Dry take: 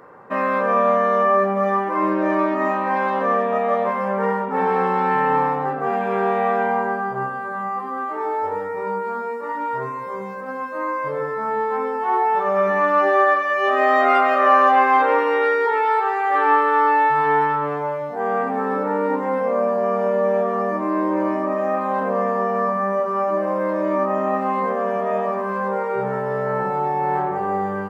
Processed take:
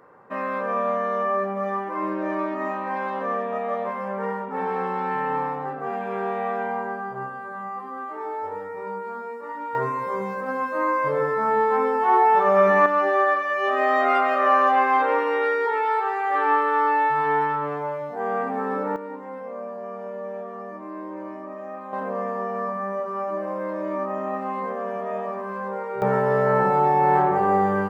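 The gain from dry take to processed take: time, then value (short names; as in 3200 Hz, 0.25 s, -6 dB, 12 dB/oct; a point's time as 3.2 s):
-7 dB
from 9.75 s +2 dB
from 12.86 s -4 dB
from 18.96 s -14 dB
from 21.93 s -7 dB
from 26.02 s +3 dB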